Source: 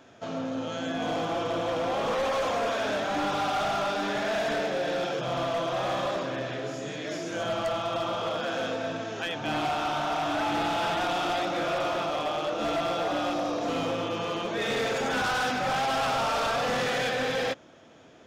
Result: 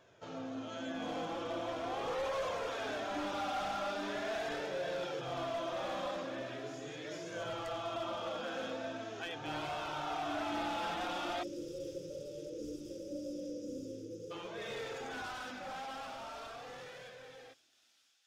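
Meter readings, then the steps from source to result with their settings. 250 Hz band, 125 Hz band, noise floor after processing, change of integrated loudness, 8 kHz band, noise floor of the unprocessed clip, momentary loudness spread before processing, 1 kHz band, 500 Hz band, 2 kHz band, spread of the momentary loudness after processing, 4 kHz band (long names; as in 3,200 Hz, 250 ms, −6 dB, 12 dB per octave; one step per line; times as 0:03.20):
−10.0 dB, −13.0 dB, −63 dBFS, −11.0 dB, −11.5 dB, −51 dBFS, 6 LU, −12.0 dB, −11.0 dB, −12.5 dB, 9 LU, −12.0 dB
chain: fade-out on the ending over 5.83 s
time-frequency box erased 0:11.43–0:14.31, 600–4,700 Hz
flanger 0.41 Hz, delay 1.8 ms, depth 2.1 ms, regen −33%
delay with a high-pass on its return 518 ms, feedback 81%, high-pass 4,600 Hz, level −14 dB
level −6 dB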